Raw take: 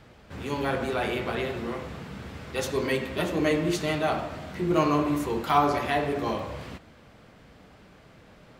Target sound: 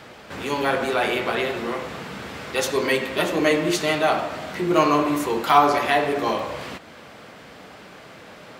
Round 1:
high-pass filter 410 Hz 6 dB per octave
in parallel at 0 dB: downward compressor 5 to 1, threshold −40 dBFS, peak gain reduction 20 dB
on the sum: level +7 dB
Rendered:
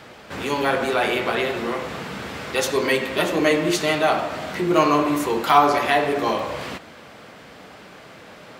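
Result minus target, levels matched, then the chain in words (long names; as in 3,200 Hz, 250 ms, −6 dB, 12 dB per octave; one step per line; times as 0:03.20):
downward compressor: peak gain reduction −7.5 dB
high-pass filter 410 Hz 6 dB per octave
in parallel at 0 dB: downward compressor 5 to 1, threshold −49.5 dBFS, peak gain reduction 27.5 dB
on the sum: level +7 dB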